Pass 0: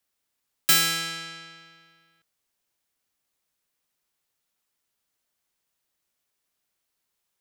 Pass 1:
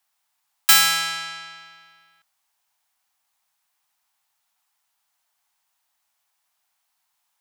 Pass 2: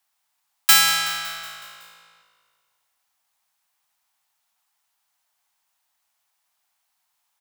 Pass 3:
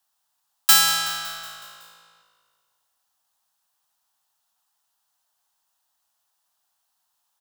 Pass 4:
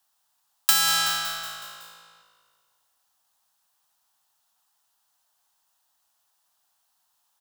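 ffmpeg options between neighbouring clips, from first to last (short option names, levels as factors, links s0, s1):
-af "lowshelf=f=600:t=q:w=3:g=-10,volume=1.78"
-filter_complex "[0:a]asplit=7[s0][s1][s2][s3][s4][s5][s6];[s1]adelay=186,afreqshift=-55,volume=0.168[s7];[s2]adelay=372,afreqshift=-110,volume=0.0989[s8];[s3]adelay=558,afreqshift=-165,volume=0.0582[s9];[s4]adelay=744,afreqshift=-220,volume=0.0347[s10];[s5]adelay=930,afreqshift=-275,volume=0.0204[s11];[s6]adelay=1116,afreqshift=-330,volume=0.012[s12];[s0][s7][s8][s9][s10][s11][s12]amix=inputs=7:normalize=0"
-af "equalizer=f=2200:t=o:w=0.42:g=-11.5"
-af "acompressor=threshold=0.112:ratio=6,volume=1.33"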